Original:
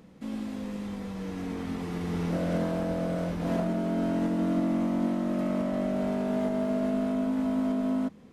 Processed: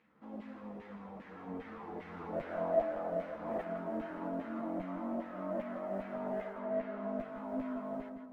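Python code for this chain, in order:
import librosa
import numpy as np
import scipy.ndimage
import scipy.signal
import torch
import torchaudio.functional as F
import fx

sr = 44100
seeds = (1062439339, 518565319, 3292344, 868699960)

y = fx.filter_lfo_bandpass(x, sr, shape='saw_down', hz=2.5, low_hz=590.0, high_hz=2200.0, q=2.2)
y = fx.mod_noise(y, sr, seeds[0], snr_db=33)
y = fx.tilt_eq(y, sr, slope=-2.5)
y = 10.0 ** (-26.5 / 20.0) * np.tanh(y / 10.0 ** (-26.5 / 20.0))
y = fx.peak_eq(y, sr, hz=690.0, db=9.5, octaves=0.37, at=(2.51, 3.09))
y = fx.lowpass(y, sr, hz=fx.line((6.52, 3100.0), (7.17, 6600.0)), slope=12, at=(6.52, 7.17), fade=0.02)
y = fx.echo_feedback(y, sr, ms=163, feedback_pct=40, wet_db=-8.5)
y = fx.ensemble(y, sr)
y = y * librosa.db_to_amplitude(2.0)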